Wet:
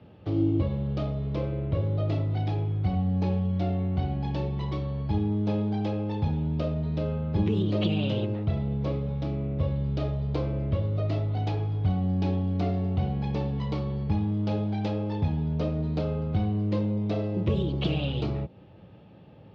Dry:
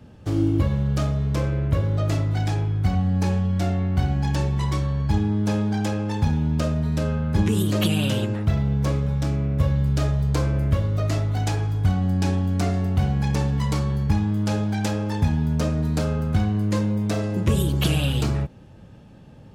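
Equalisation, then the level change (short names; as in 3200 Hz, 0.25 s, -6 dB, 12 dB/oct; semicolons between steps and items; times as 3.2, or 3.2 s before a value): dynamic EQ 1700 Hz, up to -8 dB, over -46 dBFS, Q 0.72; air absorption 100 m; speaker cabinet 110–4000 Hz, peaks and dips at 140 Hz -5 dB, 240 Hz -8 dB, 1000 Hz -3 dB, 1600 Hz -7 dB; 0.0 dB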